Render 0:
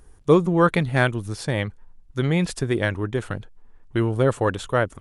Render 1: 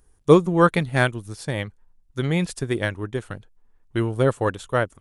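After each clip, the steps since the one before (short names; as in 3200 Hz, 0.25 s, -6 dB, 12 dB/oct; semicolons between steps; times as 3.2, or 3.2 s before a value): high shelf 6000 Hz +7.5 dB; upward expander 1.5:1, over -36 dBFS; gain +3 dB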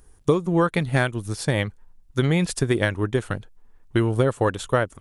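compressor 16:1, threshold -22 dBFS, peak gain reduction 16 dB; gain +6.5 dB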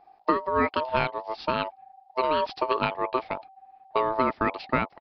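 ring modulator 770 Hz; downsampling 11025 Hz; gain -1.5 dB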